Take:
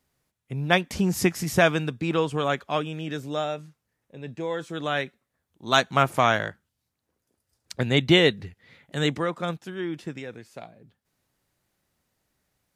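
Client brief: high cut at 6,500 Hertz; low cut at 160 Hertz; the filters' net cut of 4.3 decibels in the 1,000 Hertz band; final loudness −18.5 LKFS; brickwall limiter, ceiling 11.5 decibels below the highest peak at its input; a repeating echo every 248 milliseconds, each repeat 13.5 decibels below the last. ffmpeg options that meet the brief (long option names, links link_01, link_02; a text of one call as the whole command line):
ffmpeg -i in.wav -af "highpass=160,lowpass=6500,equalizer=frequency=1000:width_type=o:gain=-6.5,alimiter=limit=-17dB:level=0:latency=1,aecho=1:1:248|496:0.211|0.0444,volume=12.5dB" out.wav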